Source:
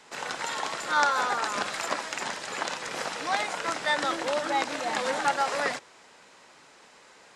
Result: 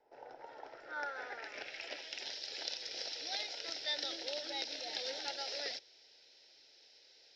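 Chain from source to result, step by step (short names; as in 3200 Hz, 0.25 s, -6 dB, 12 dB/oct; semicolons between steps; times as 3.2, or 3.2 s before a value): ladder low-pass 5700 Hz, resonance 80%; fixed phaser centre 460 Hz, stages 4; low-pass sweep 950 Hz -> 4000 Hz, 0.39–2.38; gain -1.5 dB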